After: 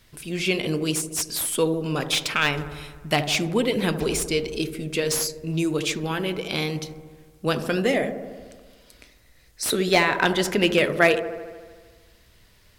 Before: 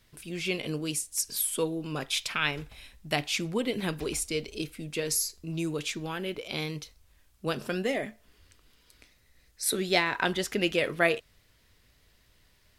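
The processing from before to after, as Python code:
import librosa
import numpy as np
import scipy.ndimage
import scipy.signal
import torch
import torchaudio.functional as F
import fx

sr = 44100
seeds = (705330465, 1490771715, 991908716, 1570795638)

y = fx.echo_wet_lowpass(x, sr, ms=75, feedback_pct=71, hz=1000.0, wet_db=-9.0)
y = fx.slew_limit(y, sr, full_power_hz=240.0)
y = y * librosa.db_to_amplitude(7.0)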